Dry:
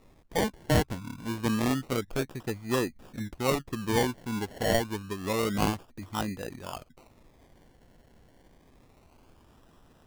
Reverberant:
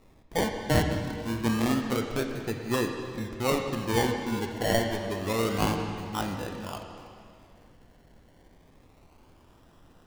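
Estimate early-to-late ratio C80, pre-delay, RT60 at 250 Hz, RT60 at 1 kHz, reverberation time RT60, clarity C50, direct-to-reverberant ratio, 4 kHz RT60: 5.5 dB, 9 ms, 2.3 s, 2.3 s, 2.4 s, 4.5 dB, 3.5 dB, 2.1 s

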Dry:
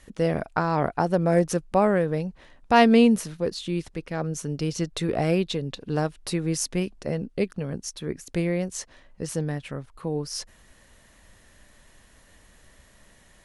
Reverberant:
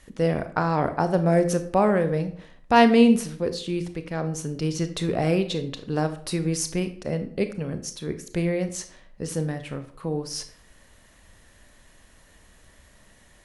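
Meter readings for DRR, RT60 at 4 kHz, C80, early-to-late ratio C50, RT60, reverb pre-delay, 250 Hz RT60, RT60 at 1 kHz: 9.0 dB, 0.40 s, 16.0 dB, 12.5 dB, 0.55 s, 25 ms, 0.60 s, 0.55 s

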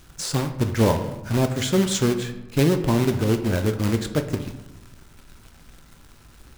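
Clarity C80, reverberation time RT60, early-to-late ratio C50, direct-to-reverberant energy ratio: 12.5 dB, 1.0 s, 10.5 dB, 7.0 dB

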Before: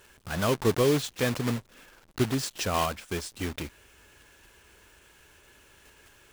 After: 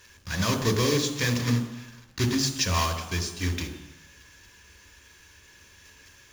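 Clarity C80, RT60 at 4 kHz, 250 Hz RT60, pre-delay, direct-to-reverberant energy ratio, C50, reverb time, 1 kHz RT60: 11.5 dB, 1.1 s, 0.95 s, 3 ms, 6.5 dB, 10.0 dB, 1.1 s, 1.1 s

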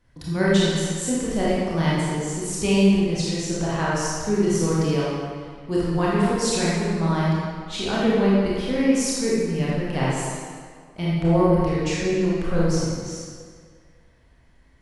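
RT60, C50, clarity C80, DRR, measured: 2.0 s, -4.0 dB, -1.0 dB, -7.5 dB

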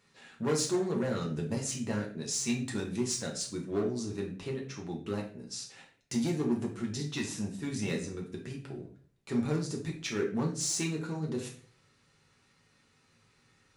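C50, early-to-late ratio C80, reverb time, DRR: 8.0 dB, 12.5 dB, 0.50 s, -1.5 dB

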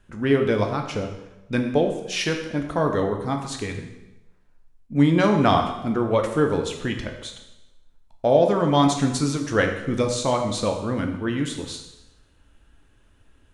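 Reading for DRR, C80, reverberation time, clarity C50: 3.5 dB, 9.0 dB, 1.0 s, 7.0 dB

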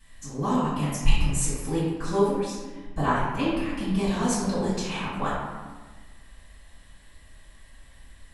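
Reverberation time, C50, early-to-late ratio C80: 1.3 s, -1.0 dB, 1.5 dB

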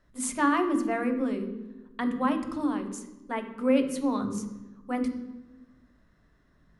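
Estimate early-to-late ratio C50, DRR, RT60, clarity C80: 8.5 dB, 5.0 dB, 1.1 s, 11.0 dB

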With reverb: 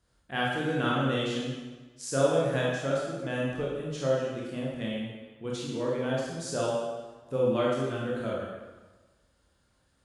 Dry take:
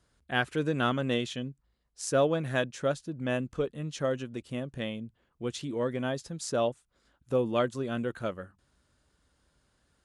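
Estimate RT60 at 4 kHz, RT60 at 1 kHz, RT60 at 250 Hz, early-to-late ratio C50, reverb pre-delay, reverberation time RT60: 1.1 s, 1.3 s, 1.3 s, -1.0 dB, 21 ms, 1.3 s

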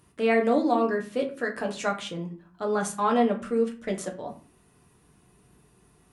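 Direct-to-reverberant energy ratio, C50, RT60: 1.0 dB, 11.0 dB, 0.45 s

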